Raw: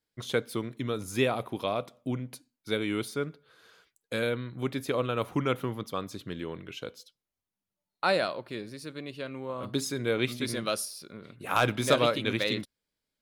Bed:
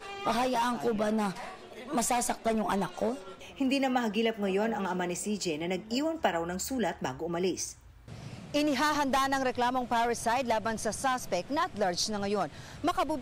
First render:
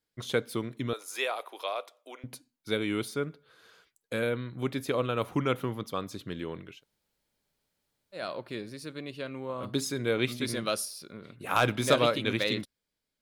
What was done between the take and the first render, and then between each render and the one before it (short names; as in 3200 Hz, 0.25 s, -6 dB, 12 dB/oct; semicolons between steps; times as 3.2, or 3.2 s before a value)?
0.93–2.24 Bessel high-pass 680 Hz, order 6; 3.19–4.35 dynamic EQ 4800 Hz, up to -8 dB, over -54 dBFS, Q 1.3; 6.72–8.24 room tone, crossfade 0.24 s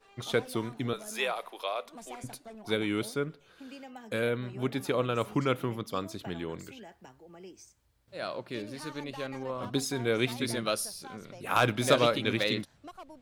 add bed -18.5 dB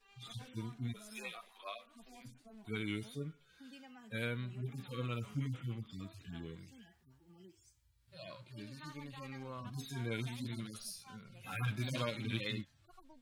median-filter separation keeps harmonic; bell 510 Hz -14 dB 2.2 oct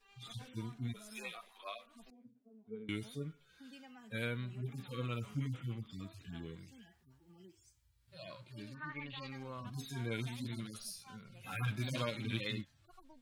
2.1–2.89 double band-pass 330 Hz, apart 0.88 oct; 8.73–9.28 synth low-pass 1200 Hz -> 4700 Hz, resonance Q 4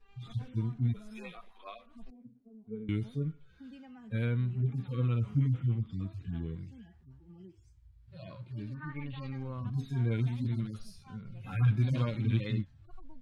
RIAA curve playback; notch 610 Hz, Q 15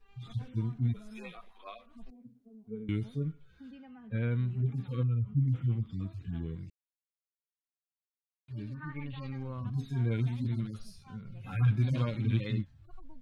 3.71–4.3 LPF 3700 Hz -> 2400 Hz; 5.03–5.48 spectral contrast raised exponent 1.5; 6.7–8.48 mute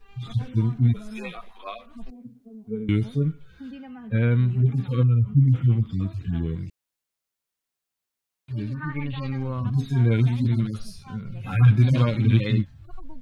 gain +10.5 dB